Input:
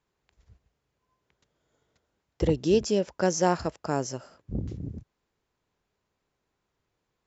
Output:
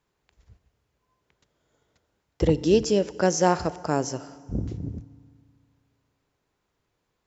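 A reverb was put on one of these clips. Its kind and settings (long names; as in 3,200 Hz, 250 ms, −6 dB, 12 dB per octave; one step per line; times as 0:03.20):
feedback delay network reverb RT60 2.1 s, low-frequency decay 1×, high-frequency decay 0.75×, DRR 16.5 dB
level +3 dB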